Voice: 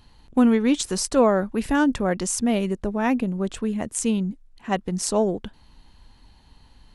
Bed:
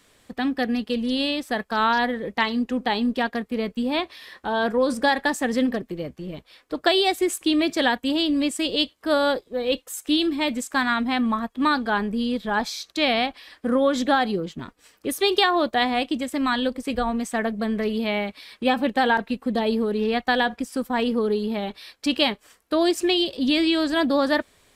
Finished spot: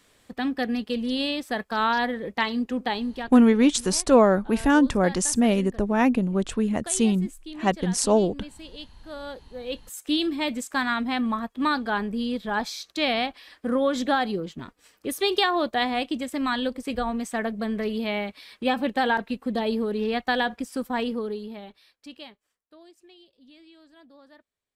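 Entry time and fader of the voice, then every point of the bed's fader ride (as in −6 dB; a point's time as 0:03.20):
2.95 s, +1.5 dB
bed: 0:02.85 −2.5 dB
0:03.72 −18.5 dB
0:09.09 −18.5 dB
0:10.09 −3 dB
0:20.95 −3 dB
0:22.90 −32 dB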